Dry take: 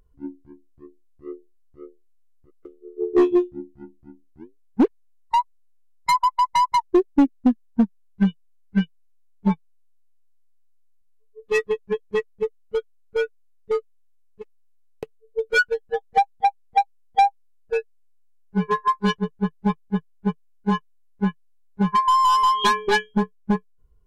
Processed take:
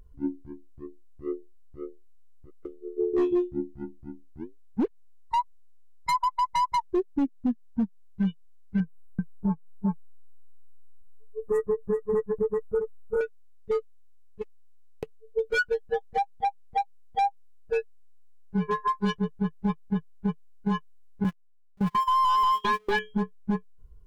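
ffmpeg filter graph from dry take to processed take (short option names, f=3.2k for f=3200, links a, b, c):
-filter_complex "[0:a]asettb=1/sr,asplit=3[a][b][c];[a]atrim=end=8.804[d];[b]atrim=start=8.8:end=13.21,asetpts=PTS-STARTPTS,afade=t=in:d=0.004:c=qsin,afade=t=out:st=4.406:d=0.004:c=qsin,acontrast=35,asuperstop=centerf=3600:order=8:qfactor=0.56,aecho=1:1:386:0.237,atrim=end_sample=194481[e];[c]atrim=start=13.206[f];[d][e]acrossfade=d=0.004:c1=hsin:c2=qsin[g];[g][f]acrossfade=d=0.004:c1=qsin:c2=hsin,asettb=1/sr,asplit=3[h][i][j];[h]atrim=end=21.244[k];[i]atrim=start=21.24:end=22.99,asetpts=PTS-STARTPTS,afade=t=in:d=0.004:c=qsin,afade=t=out:st=1.746:d=0.004:c=qsin,aeval=exprs='val(0)+0.5*0.0473*sgn(val(0))':c=same,acrossover=split=4000[l][m];[m]acompressor=threshold=-41dB:ratio=4:attack=1:release=60[n];[l][n]amix=inputs=2:normalize=0,agate=range=-33dB:threshold=-21dB:ratio=16:release=100:detection=peak[o];[j]atrim=start=22.986[p];[k][o]acrossfade=d=0.004:c1=hsin:c2=qsin[q];[q][p]acrossfade=d=0.004:c1=qsin:c2=hsin,lowshelf=f=180:g=7,acompressor=threshold=-18dB:ratio=6,alimiter=limit=-20dB:level=0:latency=1:release=66,volume=2dB"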